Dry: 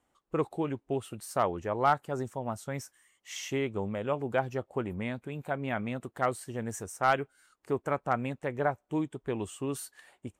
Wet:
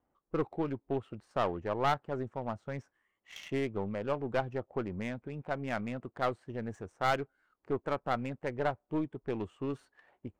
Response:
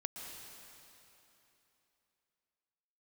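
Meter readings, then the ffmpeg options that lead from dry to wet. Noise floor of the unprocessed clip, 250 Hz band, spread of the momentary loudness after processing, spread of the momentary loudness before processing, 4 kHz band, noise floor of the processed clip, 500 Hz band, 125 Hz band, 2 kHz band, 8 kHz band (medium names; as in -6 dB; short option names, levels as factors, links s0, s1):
-77 dBFS, -2.0 dB, 9 LU, 10 LU, -1.5 dB, -82 dBFS, -2.5 dB, -2.5 dB, -3.5 dB, -15.0 dB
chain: -af "adynamicsmooth=sensitivity=6.5:basefreq=1500,aeval=exprs='(tanh(11.2*val(0)+0.45)-tanh(0.45))/11.2':c=same"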